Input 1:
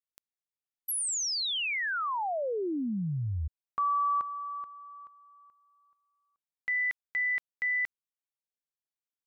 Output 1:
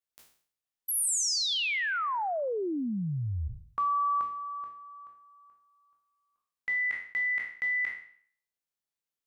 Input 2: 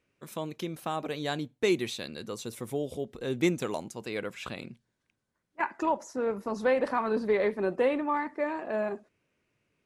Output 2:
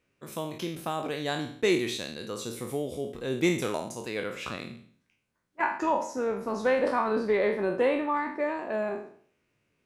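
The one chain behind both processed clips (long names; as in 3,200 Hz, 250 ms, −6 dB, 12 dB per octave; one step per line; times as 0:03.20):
peak hold with a decay on every bin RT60 0.54 s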